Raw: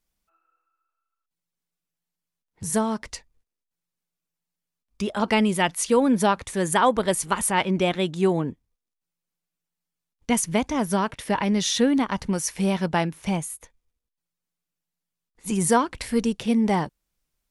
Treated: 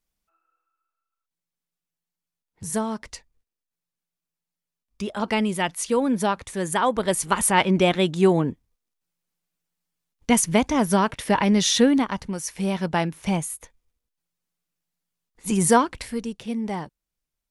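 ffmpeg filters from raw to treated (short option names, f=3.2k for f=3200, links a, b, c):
-af "volume=11dB,afade=t=in:st=6.87:d=0.64:silence=0.501187,afade=t=out:st=11.79:d=0.51:silence=0.375837,afade=t=in:st=12.3:d=1.23:silence=0.421697,afade=t=out:st=15.78:d=0.41:silence=0.334965"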